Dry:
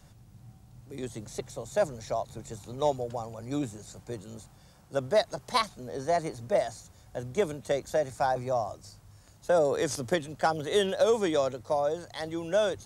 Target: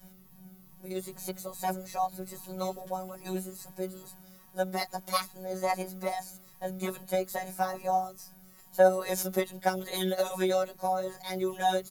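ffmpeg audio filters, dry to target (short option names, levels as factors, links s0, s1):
-filter_complex "[0:a]asplit=2[s0][s1];[s1]alimiter=limit=0.112:level=0:latency=1:release=392,volume=1.19[s2];[s0][s2]amix=inputs=2:normalize=0,afftfilt=real='hypot(re,im)*cos(PI*b)':imag='0':win_size=1024:overlap=0.75,asetrate=47628,aresample=44100,aexciter=amount=3.6:drive=9.1:freq=11000,asplit=2[s3][s4];[s4]adelay=9.1,afreqshift=2.4[s5];[s3][s5]amix=inputs=2:normalize=1"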